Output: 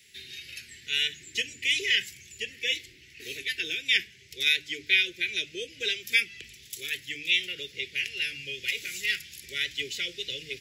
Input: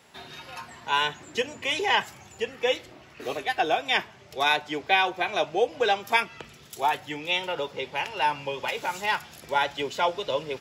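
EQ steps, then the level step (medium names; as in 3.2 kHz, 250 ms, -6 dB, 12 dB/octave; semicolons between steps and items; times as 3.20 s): elliptic band-stop 400–2000 Hz, stop band 70 dB; peaking EQ 270 Hz -14.5 dB 3 oct; hum notches 50/100/150/200/250/300 Hz; +4.5 dB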